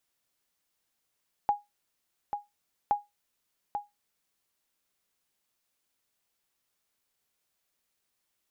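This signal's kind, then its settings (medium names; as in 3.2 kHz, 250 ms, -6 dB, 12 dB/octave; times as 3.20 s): sonar ping 823 Hz, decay 0.19 s, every 1.42 s, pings 2, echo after 0.84 s, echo -7.5 dB -17 dBFS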